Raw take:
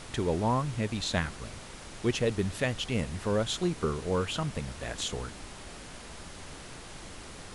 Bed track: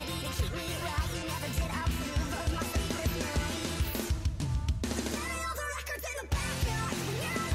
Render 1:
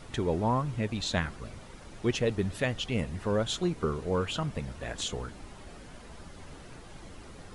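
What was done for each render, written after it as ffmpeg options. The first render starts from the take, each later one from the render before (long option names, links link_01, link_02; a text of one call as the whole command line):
ffmpeg -i in.wav -af "afftdn=noise_reduction=9:noise_floor=-46" out.wav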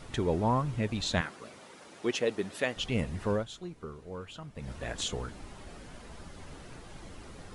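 ffmpeg -i in.wav -filter_complex "[0:a]asettb=1/sr,asplit=3[link_01][link_02][link_03];[link_01]atrim=end=1.214[link_04];[link_02]atrim=start=1.21:end=2.77,asetpts=PTS-STARTPTS,afade=type=in:duration=0.004:curve=qsin,afade=type=out:start_time=1.556:duration=0.004:curve=qsin,highpass=280[link_05];[link_03]atrim=start=2.766[link_06];[link_04][link_05]acrossfade=duration=0.004:curve1=hsin:curve2=qsin[link_07];[link_07][link_06]acrossfade=duration=0.004:curve1=qsin:curve2=hsin,asplit=3[link_08][link_09][link_10];[link_08]atrim=end=3.47,asetpts=PTS-STARTPTS,afade=type=out:start_time=3.31:duration=0.16:silence=0.237137[link_11];[link_09]atrim=start=3.47:end=4.55,asetpts=PTS-STARTPTS,volume=-12.5dB[link_12];[link_10]atrim=start=4.55,asetpts=PTS-STARTPTS,afade=type=in:duration=0.16:silence=0.237137[link_13];[link_11][link_12][link_13]concat=n=3:v=0:a=1" out.wav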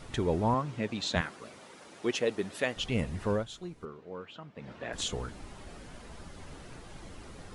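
ffmpeg -i in.wav -filter_complex "[0:a]asettb=1/sr,asplit=3[link_01][link_02][link_03];[link_01]atrim=end=0.544[link_04];[link_02]atrim=start=0.54:end=1.16,asetpts=PTS-STARTPTS,afade=type=in:duration=0.004:curve=qsin,afade=type=out:start_time=0.616:duration=0.004:curve=qsin,highpass=170,lowpass=7700[link_05];[link_03]atrim=start=1.156[link_06];[link_04][link_05]acrossfade=duration=0.004:curve1=hsin:curve2=qsin[link_07];[link_07][link_06]acrossfade=duration=0.004:curve1=qsin:curve2=hsin,asettb=1/sr,asplit=3[link_08][link_09][link_10];[link_08]atrim=end=3.854[link_11];[link_09]atrim=start=3.85:end=4.93,asetpts=PTS-STARTPTS,afade=type=in:duration=0.004:curve=qsin,afade=type=out:start_time=1.076:duration=0.004:curve=qsin,highpass=180,lowpass=3500[link_12];[link_10]atrim=start=4.926[link_13];[link_11][link_12]acrossfade=duration=0.004:curve1=hsin:curve2=qsin[link_14];[link_14][link_13]acrossfade=duration=0.004:curve1=qsin:curve2=hsin" out.wav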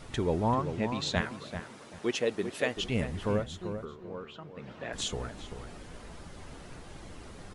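ffmpeg -i in.wav -filter_complex "[0:a]asplit=2[link_01][link_02];[link_02]adelay=389,lowpass=frequency=1600:poles=1,volume=-8dB,asplit=2[link_03][link_04];[link_04]adelay=389,lowpass=frequency=1600:poles=1,volume=0.29,asplit=2[link_05][link_06];[link_06]adelay=389,lowpass=frequency=1600:poles=1,volume=0.29[link_07];[link_01][link_03][link_05][link_07]amix=inputs=4:normalize=0" out.wav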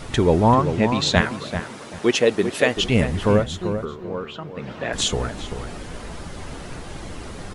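ffmpeg -i in.wav -af "volume=12dB,alimiter=limit=-2dB:level=0:latency=1" out.wav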